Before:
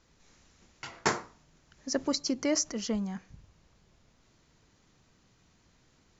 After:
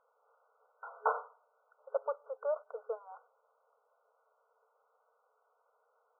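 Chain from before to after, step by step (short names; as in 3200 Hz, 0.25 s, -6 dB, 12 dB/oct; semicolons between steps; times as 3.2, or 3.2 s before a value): 2.36–3.12 G.711 law mismatch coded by A; FFT band-pass 430–1500 Hz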